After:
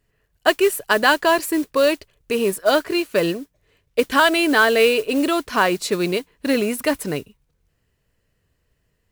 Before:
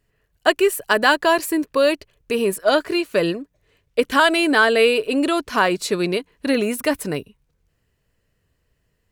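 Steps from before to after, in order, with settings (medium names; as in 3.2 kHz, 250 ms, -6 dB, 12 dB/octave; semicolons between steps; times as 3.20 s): modulation noise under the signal 21 dB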